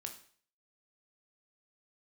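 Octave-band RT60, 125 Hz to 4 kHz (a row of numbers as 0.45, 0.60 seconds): 0.55, 0.45, 0.50, 0.50, 0.50, 0.50 seconds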